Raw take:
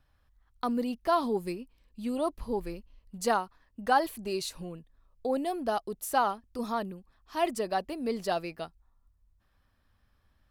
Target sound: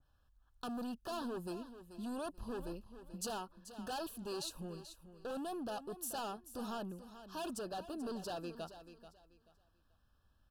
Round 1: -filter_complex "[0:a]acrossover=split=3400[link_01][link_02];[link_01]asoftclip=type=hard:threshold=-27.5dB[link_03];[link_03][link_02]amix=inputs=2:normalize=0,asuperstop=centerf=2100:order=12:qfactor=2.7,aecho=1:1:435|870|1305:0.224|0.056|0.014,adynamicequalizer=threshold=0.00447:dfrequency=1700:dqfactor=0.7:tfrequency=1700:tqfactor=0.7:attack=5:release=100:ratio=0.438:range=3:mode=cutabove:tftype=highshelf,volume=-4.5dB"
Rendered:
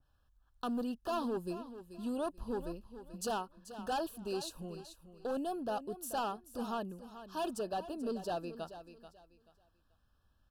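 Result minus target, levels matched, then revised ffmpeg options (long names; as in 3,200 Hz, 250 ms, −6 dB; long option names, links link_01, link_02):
hard clipping: distortion −5 dB
-filter_complex "[0:a]acrossover=split=3400[link_01][link_02];[link_01]asoftclip=type=hard:threshold=-35dB[link_03];[link_03][link_02]amix=inputs=2:normalize=0,asuperstop=centerf=2100:order=12:qfactor=2.7,aecho=1:1:435|870|1305:0.224|0.056|0.014,adynamicequalizer=threshold=0.00447:dfrequency=1700:dqfactor=0.7:tfrequency=1700:tqfactor=0.7:attack=5:release=100:ratio=0.438:range=3:mode=cutabove:tftype=highshelf,volume=-4.5dB"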